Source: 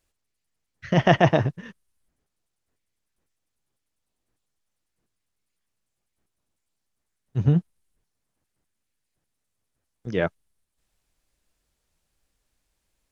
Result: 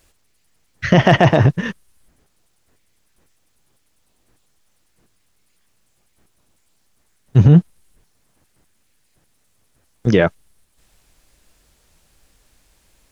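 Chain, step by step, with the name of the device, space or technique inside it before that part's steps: loud club master (compressor 2:1, threshold -20 dBFS, peak gain reduction 5.5 dB; hard clip -10.5 dBFS, distortion -30 dB; maximiser +18.5 dB); gain -1 dB

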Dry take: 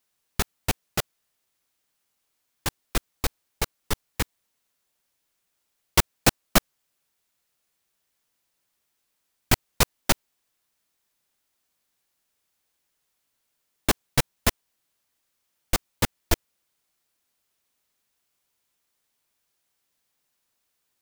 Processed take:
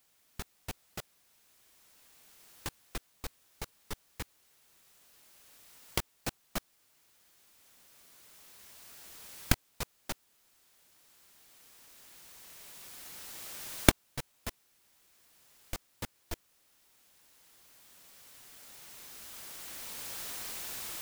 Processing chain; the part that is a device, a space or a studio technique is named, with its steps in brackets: cheap recorder with automatic gain (white noise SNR 21 dB; recorder AGC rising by 7.8 dB/s); gain -17.5 dB

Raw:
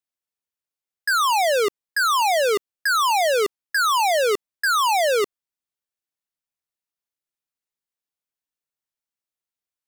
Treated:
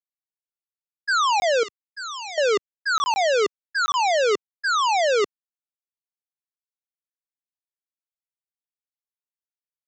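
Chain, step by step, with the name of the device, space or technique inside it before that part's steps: call with lost packets (HPF 110 Hz 12 dB/oct; downsampling 16000 Hz; AGC gain up to 12 dB; packet loss random); expander -4 dBFS; 1.63–2.38 passive tone stack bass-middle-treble 5-5-5; gain -6 dB

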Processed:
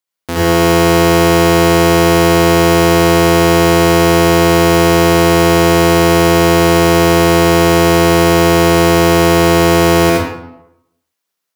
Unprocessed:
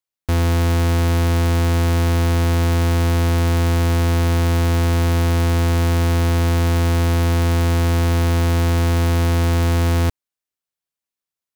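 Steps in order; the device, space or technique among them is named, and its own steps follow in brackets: far laptop microphone (reverb RT60 0.80 s, pre-delay 65 ms, DRR -5.5 dB; HPF 190 Hz 12 dB/oct; AGC gain up to 4.5 dB); gain +3.5 dB

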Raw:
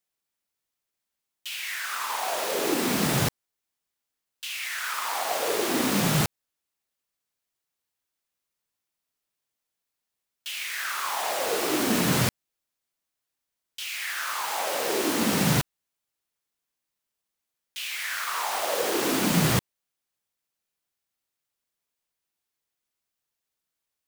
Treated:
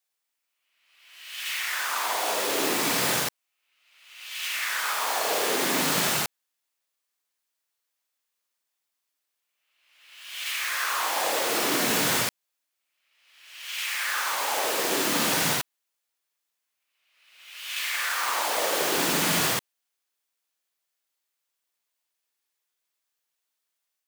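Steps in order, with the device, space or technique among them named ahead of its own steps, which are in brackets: ghost voice (reverse; reverb RT60 1.3 s, pre-delay 39 ms, DRR -1.5 dB; reverse; HPF 790 Hz 6 dB/oct)

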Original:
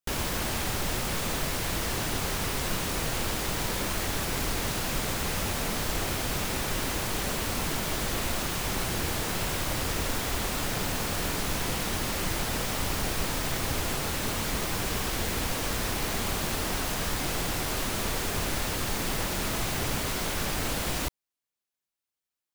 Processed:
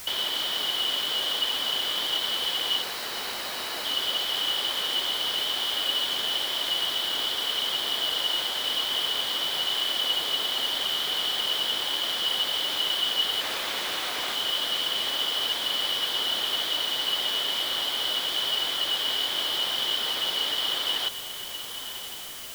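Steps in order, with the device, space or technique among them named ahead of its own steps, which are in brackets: 2.82–3.85 steep high-pass 780 Hz 96 dB/oct; 13.41–14.35 tone controls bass -13 dB, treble +6 dB; high shelf 5900 Hz -5.5 dB; diffused feedback echo 1.057 s, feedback 45%, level -11 dB; split-band scrambled radio (four-band scrambler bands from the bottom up 3412; BPF 360–3100 Hz; white noise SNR 12 dB); gain +5.5 dB

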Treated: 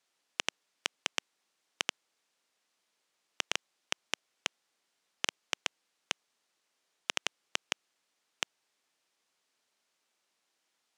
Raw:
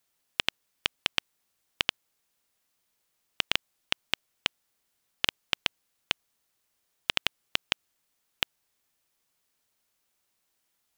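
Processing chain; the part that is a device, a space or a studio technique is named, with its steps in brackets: public-address speaker with an overloaded transformer (core saturation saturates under 3000 Hz; BPF 250–7000 Hz); gain +1.5 dB

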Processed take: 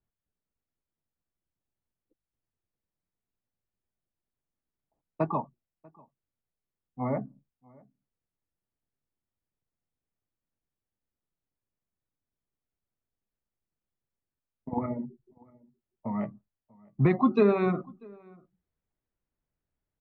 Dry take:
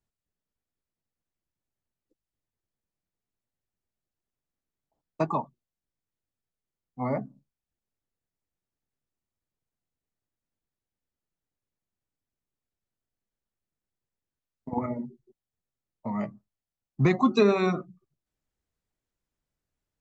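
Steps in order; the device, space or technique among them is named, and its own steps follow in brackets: shout across a valley (air absorption 440 m; outdoor echo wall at 110 m, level -26 dB)

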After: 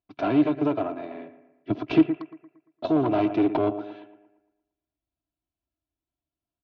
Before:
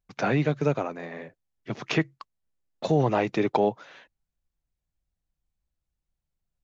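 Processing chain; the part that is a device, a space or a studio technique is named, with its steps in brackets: comb 3 ms, depth 69%; analogue delay pedal into a guitar amplifier (analogue delay 0.115 s, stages 2048, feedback 46%, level -13 dB; tube stage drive 21 dB, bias 0.65; speaker cabinet 94–3800 Hz, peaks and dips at 150 Hz +4 dB, 300 Hz +10 dB, 670 Hz +5 dB, 1900 Hz -10 dB); 1.7–2.16 low shelf 320 Hz +9 dB

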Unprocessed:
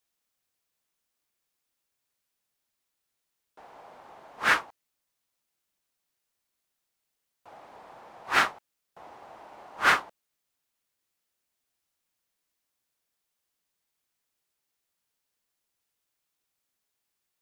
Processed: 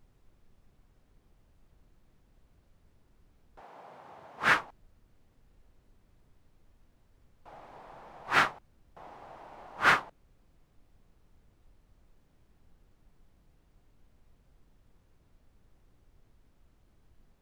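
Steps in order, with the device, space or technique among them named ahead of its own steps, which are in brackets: car interior (bell 140 Hz +7 dB; high shelf 4700 Hz -6.5 dB; brown noise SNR 22 dB); 3.6–4.41 HPF 170 Hz -> 63 Hz 24 dB/oct; gain -1 dB

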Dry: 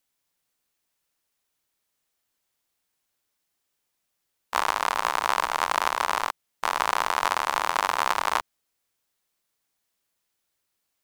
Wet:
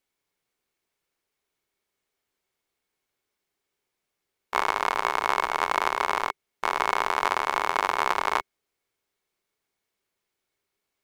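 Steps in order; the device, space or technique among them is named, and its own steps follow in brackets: inside a helmet (high shelf 5000 Hz -8.5 dB; small resonant body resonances 400/2200 Hz, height 9 dB, ringing for 40 ms)

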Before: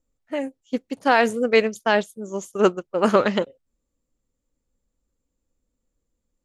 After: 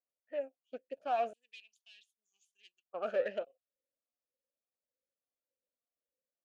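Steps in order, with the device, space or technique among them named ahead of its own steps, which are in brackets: talk box (tube stage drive 18 dB, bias 0.65; vowel sweep a-e 1.7 Hz); 1.33–2.86 inverse Chebyshev high-pass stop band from 1500 Hz, stop band 40 dB; gain -2 dB

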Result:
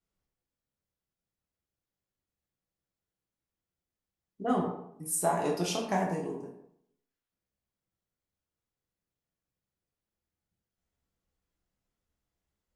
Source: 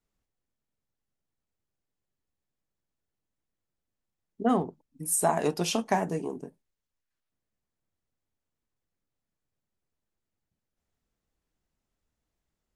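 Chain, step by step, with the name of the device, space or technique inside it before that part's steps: bathroom (reverb RT60 0.70 s, pre-delay 4 ms, DRR -1.5 dB); gain -6.5 dB

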